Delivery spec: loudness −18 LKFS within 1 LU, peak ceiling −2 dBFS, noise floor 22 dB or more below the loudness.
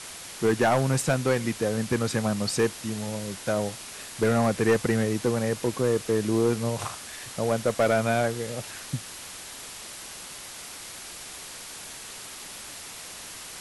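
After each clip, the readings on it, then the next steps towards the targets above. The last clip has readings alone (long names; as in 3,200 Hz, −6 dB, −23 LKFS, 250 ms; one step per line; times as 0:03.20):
share of clipped samples 0.8%; peaks flattened at −15.5 dBFS; background noise floor −41 dBFS; target noise floor −49 dBFS; integrated loudness −26.5 LKFS; sample peak −15.5 dBFS; target loudness −18.0 LKFS
→ clipped peaks rebuilt −15.5 dBFS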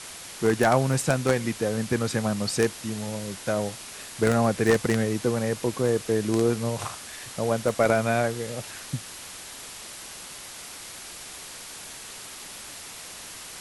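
share of clipped samples 0.0%; background noise floor −41 dBFS; target noise floor −48 dBFS
→ broadband denoise 7 dB, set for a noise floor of −41 dBFS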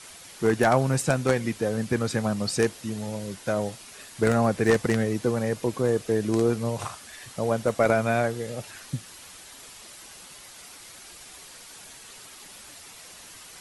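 background noise floor −46 dBFS; target noise floor −48 dBFS
→ broadband denoise 6 dB, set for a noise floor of −46 dBFS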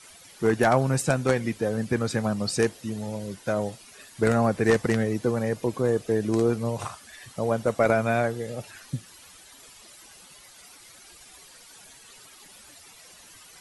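background noise floor −50 dBFS; integrated loudness −25.5 LKFS; sample peak −6.5 dBFS; target loudness −18.0 LKFS
→ level +7.5 dB
brickwall limiter −2 dBFS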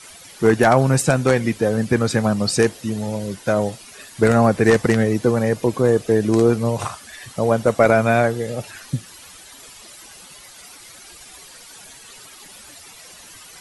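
integrated loudness −18.5 LKFS; sample peak −2.0 dBFS; background noise floor −43 dBFS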